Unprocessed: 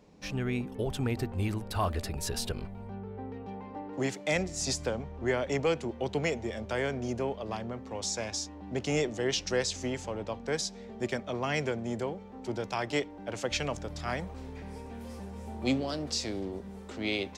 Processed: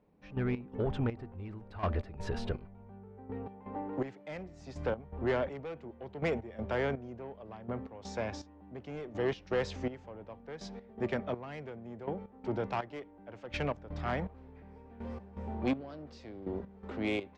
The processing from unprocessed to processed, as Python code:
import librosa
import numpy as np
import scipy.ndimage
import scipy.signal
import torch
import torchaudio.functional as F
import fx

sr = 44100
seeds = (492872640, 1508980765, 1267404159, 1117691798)

y = scipy.signal.sosfilt(scipy.signal.butter(2, 2000.0, 'lowpass', fs=sr, output='sos'), x)
y = 10.0 ** (-26.0 / 20.0) * np.tanh(y / 10.0 ** (-26.0 / 20.0))
y = fx.step_gate(y, sr, bpm=82, pattern='..x.xx..', floor_db=-12.0, edge_ms=4.5)
y = y * librosa.db_to_amplitude(2.0)